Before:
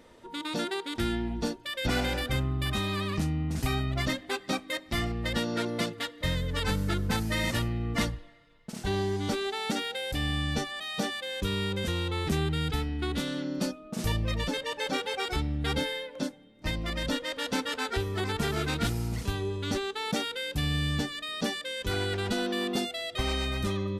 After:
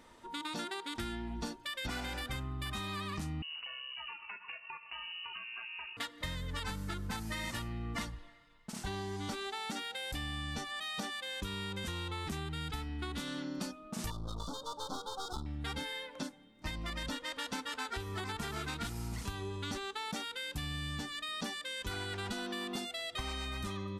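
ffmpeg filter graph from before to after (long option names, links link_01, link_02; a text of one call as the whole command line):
ffmpeg -i in.wav -filter_complex "[0:a]asettb=1/sr,asplit=3[link_01][link_02][link_03];[link_01]atrim=end=3.424[link_04];[link_02]atrim=start=3.42:end=5.97,asetpts=PTS-STARTPTS,afade=type=in:duration=0.004:curve=qsin,afade=type=out:start_time=2.546:duration=0.004:curve=qsin,acompressor=threshold=-39dB:ratio=8:attack=3.2:release=140:knee=1:detection=peak,lowpass=frequency=2600:width_type=q:width=0.5098,lowpass=frequency=2600:width_type=q:width=0.6013,lowpass=frequency=2600:width_type=q:width=0.9,lowpass=frequency=2600:width_type=q:width=2.563,afreqshift=-3000[link_05];[link_03]atrim=start=5.966[link_06];[link_04][link_05]acrossfade=duration=0.004:curve1=hsin:curve2=qsin[link_07];[link_07][link_06]acrossfade=duration=0.004:curve1=qsin:curve2=hsin,asettb=1/sr,asplit=3[link_08][link_09][link_10];[link_08]atrim=end=14.104[link_11];[link_09]atrim=start=14.1:end=15.46,asetpts=PTS-STARTPTS,afade=type=in:duration=0.004:curve=qsin,afade=type=out:start_time=1.356:duration=0.004:curve=qsin,highshelf=frequency=5800:gain=-5.5,aeval=exprs='clip(val(0),-1,0.01)':channel_layout=same,asuperstop=centerf=2200:order=12:qfactor=1.1[link_12];[link_10]atrim=start=15.456[link_13];[link_11][link_12]acrossfade=duration=0.004:curve1=hsin:curve2=qsin[link_14];[link_14][link_13]acrossfade=duration=0.004:curve1=qsin:curve2=hsin,equalizer=frequency=125:width_type=o:width=1:gain=-4,equalizer=frequency=500:width_type=o:width=1:gain=-7,equalizer=frequency=1000:width_type=o:width=1:gain=5,equalizer=frequency=8000:width_type=o:width=1:gain=3,acompressor=threshold=-33dB:ratio=6,volume=-2.5dB" out.wav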